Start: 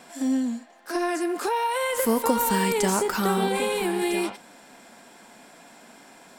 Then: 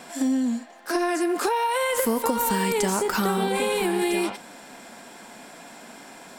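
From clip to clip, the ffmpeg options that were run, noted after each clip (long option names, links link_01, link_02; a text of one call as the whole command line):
ffmpeg -i in.wav -af "acompressor=threshold=-26dB:ratio=5,volume=5.5dB" out.wav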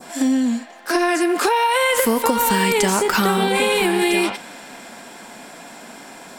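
ffmpeg -i in.wav -af "adynamicequalizer=threshold=0.00708:dfrequency=2600:dqfactor=0.76:tfrequency=2600:tqfactor=0.76:attack=5:release=100:ratio=0.375:range=2.5:mode=boostabove:tftype=bell,volume=5dB" out.wav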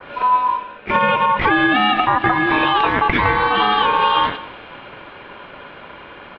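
ffmpeg -i in.wav -af "aecho=1:1:186:0.126,highpass=frequency=210:width_type=q:width=0.5412,highpass=frequency=210:width_type=q:width=1.307,lowpass=frequency=2800:width_type=q:width=0.5176,lowpass=frequency=2800:width_type=q:width=0.7071,lowpass=frequency=2800:width_type=q:width=1.932,afreqshift=-260,aeval=exprs='val(0)*sin(2*PI*1000*n/s)':channel_layout=same,volume=5.5dB" out.wav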